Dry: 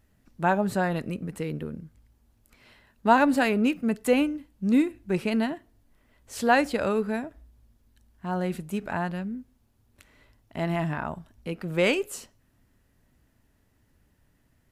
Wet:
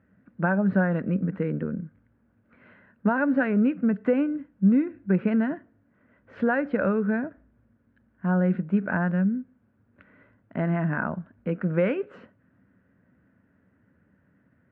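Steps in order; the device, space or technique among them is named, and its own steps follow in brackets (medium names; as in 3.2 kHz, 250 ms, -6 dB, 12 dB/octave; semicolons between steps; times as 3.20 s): bass amplifier (compression 5:1, threshold -25 dBFS, peak gain reduction 11 dB; cabinet simulation 82–2100 Hz, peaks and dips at 190 Hz +10 dB, 270 Hz +5 dB, 530 Hz +6 dB, 820 Hz -4 dB, 1.5 kHz +9 dB); trim +1 dB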